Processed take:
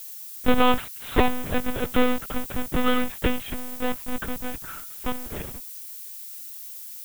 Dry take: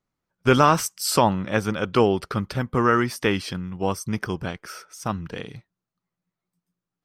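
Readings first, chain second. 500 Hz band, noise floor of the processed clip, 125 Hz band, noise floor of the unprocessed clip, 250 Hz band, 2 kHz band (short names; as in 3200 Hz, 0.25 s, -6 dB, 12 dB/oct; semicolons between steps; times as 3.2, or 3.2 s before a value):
-4.5 dB, -39 dBFS, -9.0 dB, under -85 dBFS, -2.0 dB, -2.5 dB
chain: half-waves squared off; monotone LPC vocoder at 8 kHz 250 Hz; added noise violet -34 dBFS; gain -5 dB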